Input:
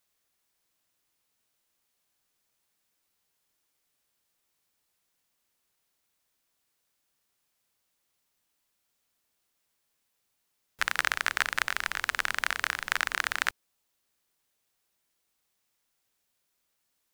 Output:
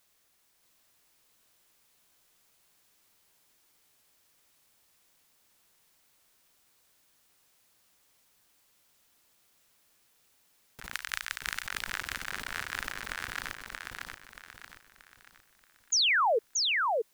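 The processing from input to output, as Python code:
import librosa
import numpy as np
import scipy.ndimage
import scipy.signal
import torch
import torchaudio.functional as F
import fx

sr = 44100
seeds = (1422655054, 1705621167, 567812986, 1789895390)

p1 = fx.tone_stack(x, sr, knobs='10-0-10', at=(10.94, 11.66))
p2 = fx.over_compress(p1, sr, threshold_db=-40.0, ratio=-1.0)
p3 = fx.spec_paint(p2, sr, seeds[0], shape='fall', start_s=15.92, length_s=0.47, low_hz=410.0, high_hz=7100.0, level_db=-25.0)
y = p3 + fx.echo_feedback(p3, sr, ms=630, feedback_pct=39, wet_db=-3, dry=0)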